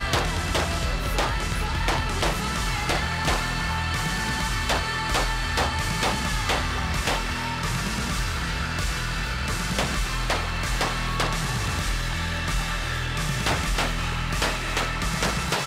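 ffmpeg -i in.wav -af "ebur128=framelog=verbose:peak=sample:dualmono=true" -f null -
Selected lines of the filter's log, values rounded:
Integrated loudness:
  I:         -22.5 LUFS
  Threshold: -32.5 LUFS
Loudness range:
  LRA:         1.7 LU
  Threshold: -42.5 LUFS
  LRA low:   -23.4 LUFS
  LRA high:  -21.7 LUFS
Sample peak:
  Peak:      -10.9 dBFS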